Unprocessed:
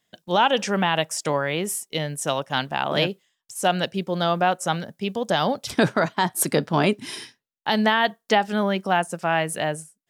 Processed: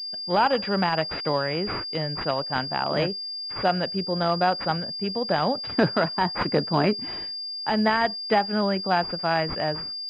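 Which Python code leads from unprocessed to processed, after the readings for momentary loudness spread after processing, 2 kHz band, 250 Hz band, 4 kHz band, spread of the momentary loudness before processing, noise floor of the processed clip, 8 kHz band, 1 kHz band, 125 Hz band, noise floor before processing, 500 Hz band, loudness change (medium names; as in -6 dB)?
6 LU, -3.5 dB, -1.5 dB, +1.5 dB, 8 LU, -34 dBFS, under -25 dB, -1.5 dB, -1.5 dB, -80 dBFS, -1.5 dB, -1.5 dB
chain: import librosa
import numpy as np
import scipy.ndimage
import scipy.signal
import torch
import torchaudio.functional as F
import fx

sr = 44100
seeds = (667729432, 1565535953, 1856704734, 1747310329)

y = fx.pwm(x, sr, carrier_hz=4800.0)
y = y * 10.0 ** (-1.5 / 20.0)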